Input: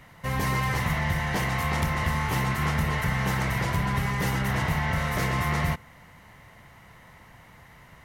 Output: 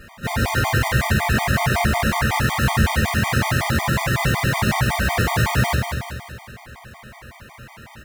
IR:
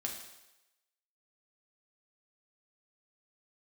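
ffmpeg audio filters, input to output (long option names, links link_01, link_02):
-filter_complex "[0:a]lowpass=frequency=5300:width=0.5412,lowpass=frequency=5300:width=1.3066,asplit=2[link_01][link_02];[link_02]alimiter=limit=-22dB:level=0:latency=1:release=166,volume=-1dB[link_03];[link_01][link_03]amix=inputs=2:normalize=0,acrusher=bits=2:mode=log:mix=0:aa=0.000001,asplit=3[link_04][link_05][link_06];[link_05]asetrate=37084,aresample=44100,atempo=1.18921,volume=0dB[link_07];[link_06]asetrate=58866,aresample=44100,atempo=0.749154,volume=-5dB[link_08];[link_04][link_07][link_08]amix=inputs=3:normalize=0,aecho=1:1:190|380|570|760|950|1140|1330:0.501|0.266|0.141|0.0746|0.0395|0.021|0.0111[link_09];[1:a]atrim=start_sample=2205,atrim=end_sample=3969[link_10];[link_09][link_10]afir=irnorm=-1:irlink=0,afftfilt=real='re*gt(sin(2*PI*5.4*pts/sr)*(1-2*mod(floor(b*sr/1024/620),2)),0)':imag='im*gt(sin(2*PI*5.4*pts/sr)*(1-2*mod(floor(b*sr/1024/620),2)),0)':win_size=1024:overlap=0.75,volume=1.5dB"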